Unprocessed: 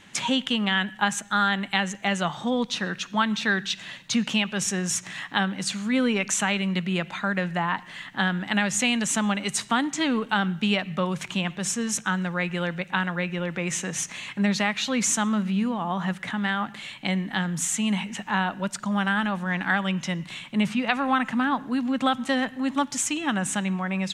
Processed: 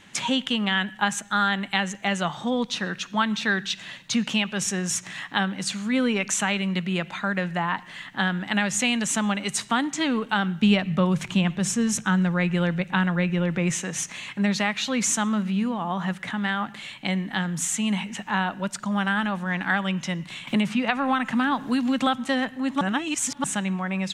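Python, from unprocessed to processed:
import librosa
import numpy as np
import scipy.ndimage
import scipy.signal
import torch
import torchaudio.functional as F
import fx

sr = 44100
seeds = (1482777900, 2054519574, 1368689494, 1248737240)

y = fx.low_shelf(x, sr, hz=260.0, db=10.0, at=(10.62, 13.72))
y = fx.band_squash(y, sr, depth_pct=100, at=(20.47, 22.07))
y = fx.edit(y, sr, fx.reverse_span(start_s=22.81, length_s=0.63), tone=tone)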